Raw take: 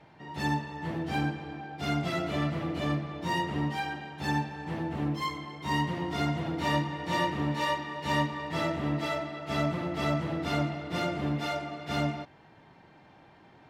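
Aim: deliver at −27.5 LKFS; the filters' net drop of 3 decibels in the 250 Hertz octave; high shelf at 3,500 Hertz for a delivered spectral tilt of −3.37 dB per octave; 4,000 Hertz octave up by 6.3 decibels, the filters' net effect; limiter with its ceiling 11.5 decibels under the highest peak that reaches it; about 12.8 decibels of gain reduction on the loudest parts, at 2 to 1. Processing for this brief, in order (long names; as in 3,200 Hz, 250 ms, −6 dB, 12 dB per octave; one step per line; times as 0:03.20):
parametric band 250 Hz −4.5 dB
high-shelf EQ 3,500 Hz +6 dB
parametric band 4,000 Hz +4.5 dB
downward compressor 2 to 1, threshold −48 dBFS
level +20.5 dB
brickwall limiter −19 dBFS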